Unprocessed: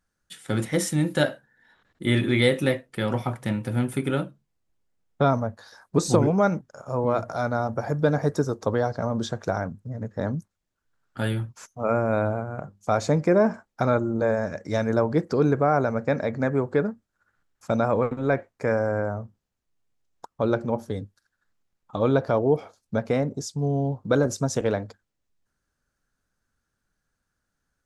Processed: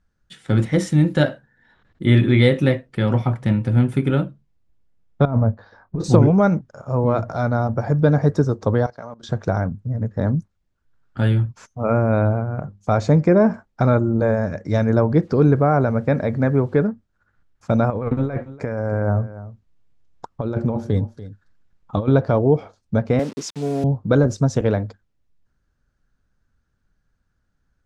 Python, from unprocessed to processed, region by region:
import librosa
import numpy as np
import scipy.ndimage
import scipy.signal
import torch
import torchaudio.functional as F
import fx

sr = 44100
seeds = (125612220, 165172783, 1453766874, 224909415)

y = fx.chain(x, sr, fx.over_compress(threshold_db=-26.0, ratio=-1.0),
    fx.spacing_loss(db_at_10k=35),
    fx.doubler(ms=27.0, db=-13.5), at=(5.25, 6.04))
y = fx.chain(y, sr, fx.highpass(hz=1100.0, slope=6),
    fx.level_steps(step_db=19), at=(8.86, 9.29))
y = fx.chain(y, sr, fx.high_shelf(hz=8000.0, db=-7.0),
    fx.quant_dither(seeds[0], bits=10, dither='none'), at=(15.22, 16.86))
y = fx.chain(y, sr, fx.over_compress(threshold_db=-28.0, ratio=-1.0),
    fx.echo_single(ms=288, db=-16.0), at=(17.9, 22.08))
y = fx.chain(y, sr, fx.delta_hold(step_db=-38.0),
    fx.cheby1_highpass(hz=310.0, order=2),
    fx.high_shelf(hz=2100.0, db=8.5), at=(23.19, 23.84))
y = scipy.signal.sosfilt(scipy.signal.bessel(2, 4800.0, 'lowpass', norm='mag', fs=sr, output='sos'), y)
y = fx.low_shelf(y, sr, hz=190.0, db=11.5)
y = F.gain(torch.from_numpy(y), 2.0).numpy()